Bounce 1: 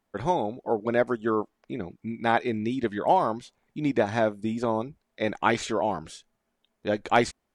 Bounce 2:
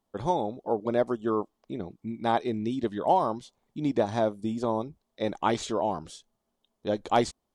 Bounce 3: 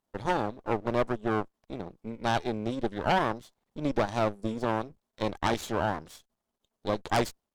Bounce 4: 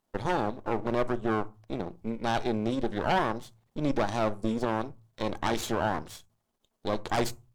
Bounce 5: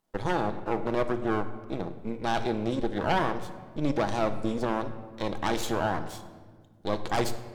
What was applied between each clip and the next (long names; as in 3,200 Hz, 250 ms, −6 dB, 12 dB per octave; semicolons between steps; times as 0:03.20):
flat-topped bell 1,900 Hz −8 dB 1.1 octaves; level −1.5 dB
half-wave rectification; harmonic generator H 4 −10 dB, 6 −11 dB, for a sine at −9 dBFS
on a send at −16 dB: convolution reverb RT60 0.30 s, pre-delay 3 ms; on the sum: brickwall limiter −20 dBFS, peak gain reduction 10.5 dB; level +4 dB
rectangular room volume 1,900 cubic metres, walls mixed, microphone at 0.65 metres